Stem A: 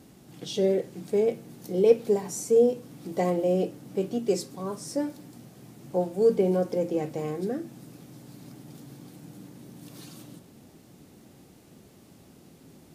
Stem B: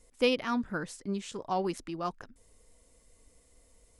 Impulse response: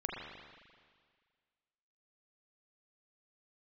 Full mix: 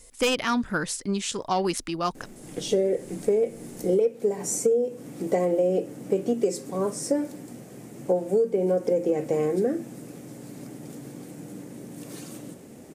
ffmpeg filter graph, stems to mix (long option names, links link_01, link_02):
-filter_complex "[0:a]equalizer=frequency=250:width_type=o:width=1:gain=4,equalizer=frequency=500:width_type=o:width=1:gain=9,equalizer=frequency=2000:width_type=o:width=1:gain=6,equalizer=frequency=4000:width_type=o:width=1:gain=-4,equalizer=frequency=8000:width_type=o:width=1:gain=8,adelay=2150,volume=1dB[link_01];[1:a]highshelf=frequency=2500:gain=9,aeval=exprs='0.299*sin(PI/2*2.24*val(0)/0.299)':channel_layout=same,volume=-4dB[link_02];[link_01][link_02]amix=inputs=2:normalize=0,acompressor=threshold=-19dB:ratio=16"